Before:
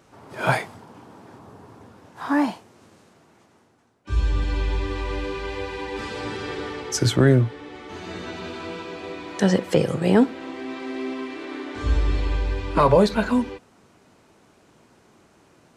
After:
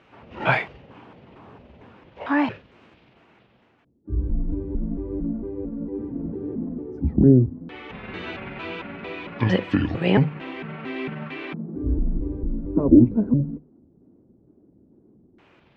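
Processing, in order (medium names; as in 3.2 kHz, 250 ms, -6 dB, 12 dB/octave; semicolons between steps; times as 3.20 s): pitch shift switched off and on -9.5 st, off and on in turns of 226 ms; hum notches 50/100/150 Hz; LFO low-pass square 0.13 Hz 310–2700 Hz; trim -1 dB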